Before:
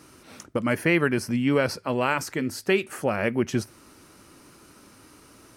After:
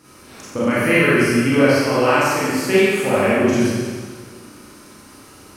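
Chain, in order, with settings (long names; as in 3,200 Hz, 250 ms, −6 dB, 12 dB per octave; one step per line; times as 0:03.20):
four-comb reverb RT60 1.7 s, combs from 30 ms, DRR −10 dB
level −1.5 dB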